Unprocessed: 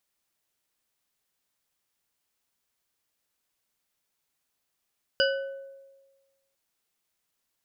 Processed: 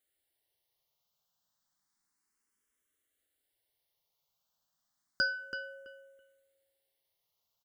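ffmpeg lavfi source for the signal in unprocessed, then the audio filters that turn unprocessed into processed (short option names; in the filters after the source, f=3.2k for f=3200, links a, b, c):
-f lavfi -i "aevalsrc='0.0841*pow(10,-3*t/1.35)*sin(2*PI*546*t)+0.075*pow(10,-3*t/0.664)*sin(2*PI*1505.3*t)+0.0668*pow(10,-3*t/0.414)*sin(2*PI*2950.6*t)+0.0596*pow(10,-3*t/0.291)*sin(2*PI*4877.4*t)':d=1.35:s=44100"
-filter_complex "[0:a]bandreject=f=2.5k:w=6.7,asplit=2[a][b];[b]adelay=330,lowpass=f=3.7k:p=1,volume=-9.5dB,asplit=2[c][d];[d]adelay=330,lowpass=f=3.7k:p=1,volume=0.18,asplit=2[e][f];[f]adelay=330,lowpass=f=3.7k:p=1,volume=0.18[g];[a][c][e][g]amix=inputs=4:normalize=0,asplit=2[h][i];[i]afreqshift=0.31[j];[h][j]amix=inputs=2:normalize=1"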